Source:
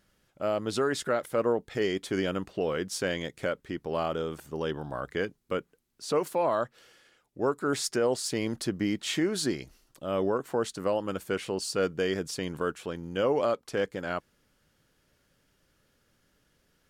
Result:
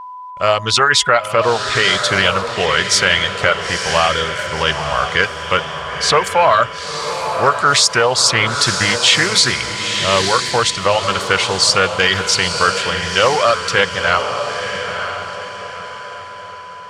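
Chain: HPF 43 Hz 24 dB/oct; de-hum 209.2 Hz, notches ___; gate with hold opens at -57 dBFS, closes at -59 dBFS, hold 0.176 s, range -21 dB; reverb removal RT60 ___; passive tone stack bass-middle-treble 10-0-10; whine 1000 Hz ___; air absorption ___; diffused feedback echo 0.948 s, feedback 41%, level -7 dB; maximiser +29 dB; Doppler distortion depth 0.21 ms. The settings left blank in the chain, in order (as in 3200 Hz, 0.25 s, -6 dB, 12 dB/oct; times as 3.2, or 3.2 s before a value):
16, 0.76 s, -58 dBFS, 87 m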